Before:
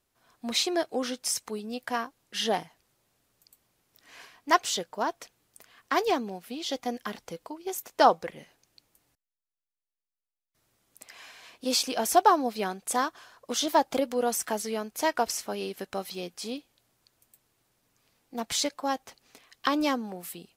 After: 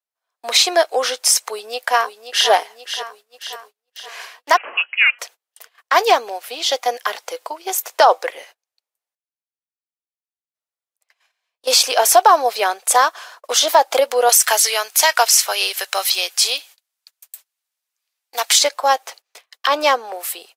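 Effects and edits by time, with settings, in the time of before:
0:01.44–0:02.49: delay throw 530 ms, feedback 55%, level −10 dB
0:04.57–0:05.19: voice inversion scrambler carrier 3,100 Hz
0:08.33–0:11.67: fade out, to −13 dB
0:14.29–0:18.59: tilt shelving filter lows −9.5 dB
0:19.69–0:20.13: high-shelf EQ 6,400 Hz −7.5 dB
whole clip: noise gate −54 dBFS, range −31 dB; inverse Chebyshev high-pass filter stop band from 150 Hz, stop band 60 dB; boost into a limiter +16 dB; level −1 dB

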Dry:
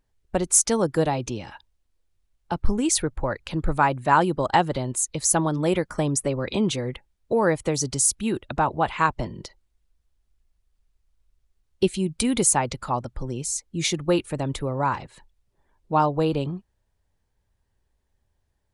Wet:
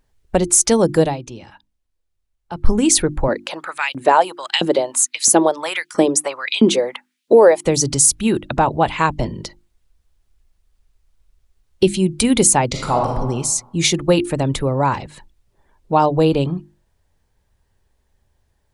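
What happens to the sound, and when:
0:01.00–0:02.70: duck −11.5 dB, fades 0.18 s
0:03.28–0:07.65: auto-filter high-pass saw up 1.5 Hz 240–3,500 Hz
0:12.71–0:13.14: thrown reverb, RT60 1.1 s, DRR −1 dB
whole clip: mains-hum notches 50/100/150/200/250/300/350 Hz; dynamic equaliser 1,300 Hz, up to −6 dB, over −37 dBFS, Q 1.5; boost into a limiter +9.5 dB; level −1 dB

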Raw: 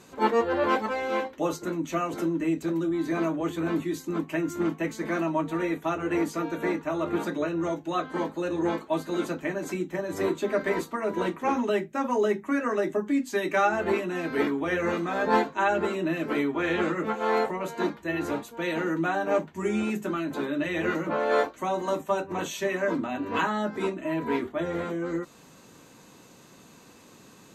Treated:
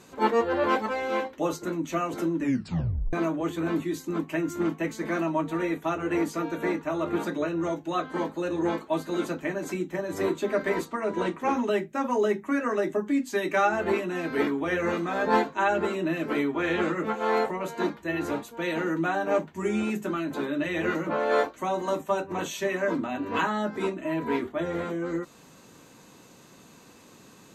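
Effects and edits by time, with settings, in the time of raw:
0:02.39: tape stop 0.74 s
0:10.85–0:11.40: low-pass filter 9,800 Hz 24 dB per octave

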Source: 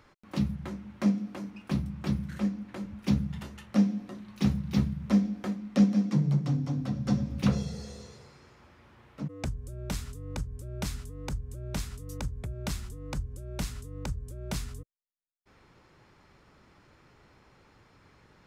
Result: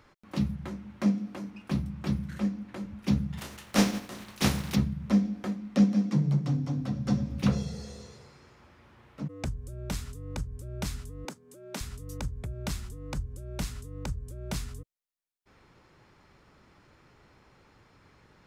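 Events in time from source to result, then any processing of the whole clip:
0:03.37–0:04.74: compressing power law on the bin magnitudes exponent 0.57
0:11.25–0:11.81: high-pass filter 220 Hz 24 dB per octave

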